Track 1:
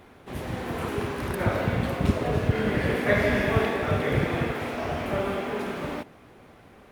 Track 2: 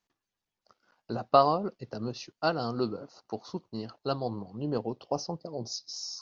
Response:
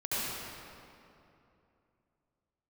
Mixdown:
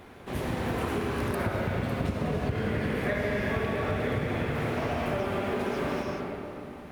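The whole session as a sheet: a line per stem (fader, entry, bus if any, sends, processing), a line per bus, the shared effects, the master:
+0.5 dB, 0.00 s, send -9 dB, none
-15.5 dB, 0.00 s, no send, none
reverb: on, RT60 2.8 s, pre-delay 65 ms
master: compression, threshold -26 dBFS, peak gain reduction 12.5 dB

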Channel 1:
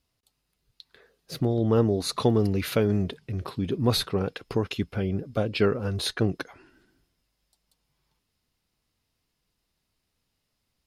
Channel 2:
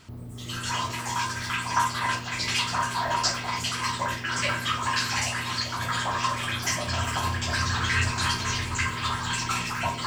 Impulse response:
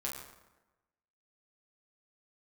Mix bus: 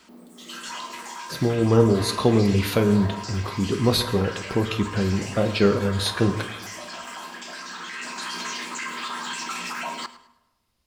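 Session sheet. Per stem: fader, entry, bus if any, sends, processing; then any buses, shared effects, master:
-0.5 dB, 0.00 s, send -3 dB, no echo send, none
-1.0 dB, 0.00 s, send -14 dB, echo send -16.5 dB, steep high-pass 180 Hz 72 dB/octave; peak limiter -22 dBFS, peak gain reduction 11 dB; auto duck -7 dB, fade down 1.25 s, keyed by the first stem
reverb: on, RT60 1.1 s, pre-delay 7 ms
echo: feedback delay 106 ms, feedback 31%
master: none

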